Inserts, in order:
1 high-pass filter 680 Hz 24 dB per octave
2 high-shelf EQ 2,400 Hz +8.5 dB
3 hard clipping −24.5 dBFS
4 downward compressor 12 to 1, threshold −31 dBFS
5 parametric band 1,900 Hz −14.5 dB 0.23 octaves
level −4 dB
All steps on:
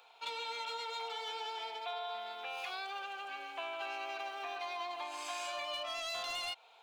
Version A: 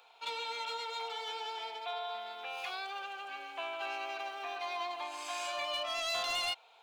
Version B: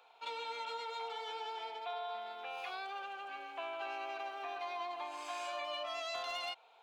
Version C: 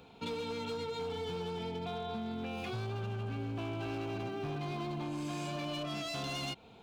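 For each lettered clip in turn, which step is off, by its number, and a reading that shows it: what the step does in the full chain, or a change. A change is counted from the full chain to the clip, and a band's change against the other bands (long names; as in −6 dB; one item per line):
4, average gain reduction 1.5 dB
2, 8 kHz band −6.5 dB
1, 250 Hz band +26.5 dB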